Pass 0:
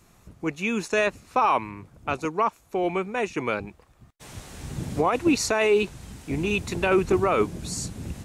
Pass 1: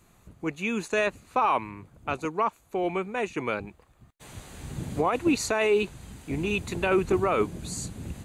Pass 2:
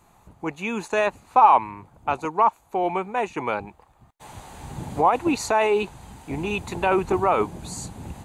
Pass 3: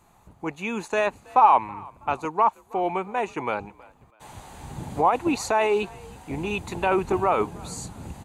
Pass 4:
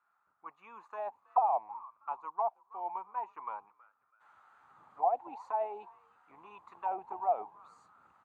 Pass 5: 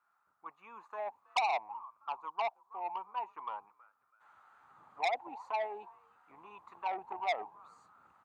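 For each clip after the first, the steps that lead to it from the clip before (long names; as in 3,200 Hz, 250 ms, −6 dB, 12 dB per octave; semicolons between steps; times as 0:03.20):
notch filter 5,400 Hz, Q 5.1; level −2.5 dB
parametric band 860 Hz +13 dB 0.68 octaves
echo with shifted repeats 324 ms, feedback 35%, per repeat +48 Hz, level −24 dB; level −1.5 dB
envelope filter 700–1,400 Hz, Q 9.8, down, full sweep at −16.5 dBFS; level −2 dB
saturating transformer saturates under 2,800 Hz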